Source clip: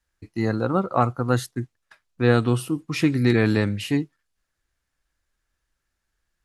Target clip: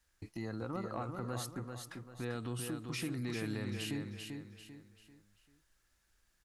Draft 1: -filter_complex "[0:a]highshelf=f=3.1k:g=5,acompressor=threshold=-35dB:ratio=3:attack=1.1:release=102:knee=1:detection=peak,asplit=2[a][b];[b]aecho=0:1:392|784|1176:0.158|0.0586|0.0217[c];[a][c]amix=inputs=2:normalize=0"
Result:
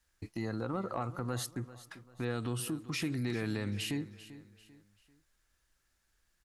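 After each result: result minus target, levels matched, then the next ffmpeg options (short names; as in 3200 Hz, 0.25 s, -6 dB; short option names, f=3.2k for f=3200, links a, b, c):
echo-to-direct -10.5 dB; compressor: peak gain reduction -4.5 dB
-filter_complex "[0:a]highshelf=f=3.1k:g=5,acompressor=threshold=-35dB:ratio=3:attack=1.1:release=102:knee=1:detection=peak,asplit=2[a][b];[b]aecho=0:1:392|784|1176|1568:0.531|0.196|0.0727|0.0269[c];[a][c]amix=inputs=2:normalize=0"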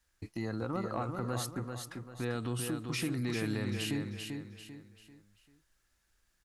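compressor: peak gain reduction -4.5 dB
-filter_complex "[0:a]highshelf=f=3.1k:g=5,acompressor=threshold=-41.5dB:ratio=3:attack=1.1:release=102:knee=1:detection=peak,asplit=2[a][b];[b]aecho=0:1:392|784|1176|1568:0.531|0.196|0.0727|0.0269[c];[a][c]amix=inputs=2:normalize=0"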